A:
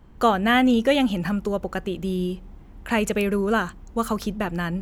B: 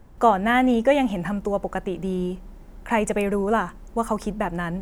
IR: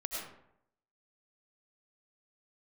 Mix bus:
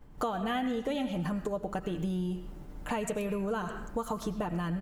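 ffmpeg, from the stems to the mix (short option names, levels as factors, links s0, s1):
-filter_complex "[0:a]volume=0.299,asplit=2[s0][s1];[s1]volume=0.501[s2];[1:a]agate=range=0.0224:threshold=0.00794:ratio=3:detection=peak,aecho=1:1:6.8:0.91,acompressor=threshold=0.0708:ratio=6,volume=0.631[s3];[2:a]atrim=start_sample=2205[s4];[s2][s4]afir=irnorm=-1:irlink=0[s5];[s0][s3][s5]amix=inputs=3:normalize=0,acompressor=threshold=0.0282:ratio=3"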